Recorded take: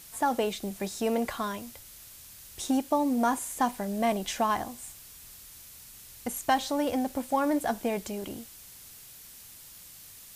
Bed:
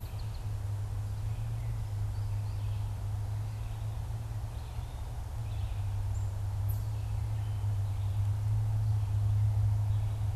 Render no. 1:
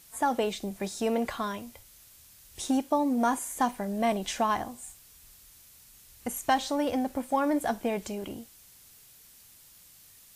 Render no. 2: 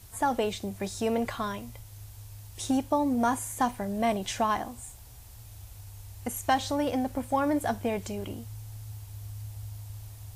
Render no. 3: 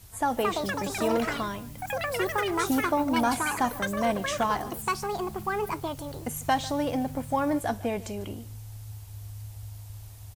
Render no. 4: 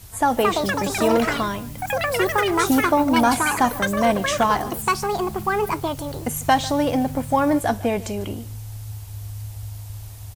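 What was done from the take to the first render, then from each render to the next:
noise print and reduce 6 dB
add bed -12 dB
echoes that change speed 0.289 s, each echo +6 st, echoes 3; echo 0.148 s -19 dB
gain +7.5 dB

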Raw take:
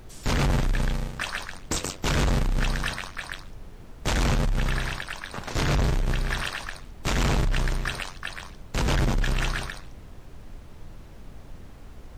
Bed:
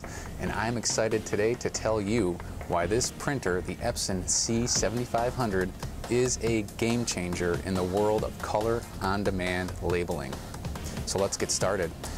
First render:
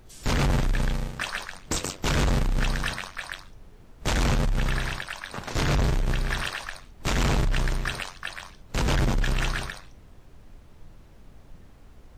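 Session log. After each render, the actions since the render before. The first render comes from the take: noise print and reduce 6 dB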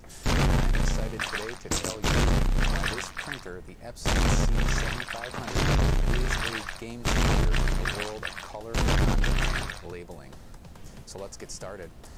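add bed -12 dB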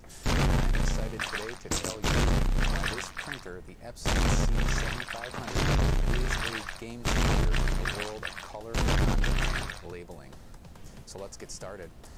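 gain -2 dB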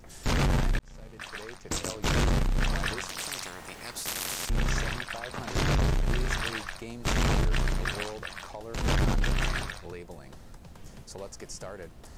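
0.79–1.98 fade in; 3.09–4.5 spectral compressor 10:1; 8.12–8.84 compressor 2:1, threshold -33 dBFS

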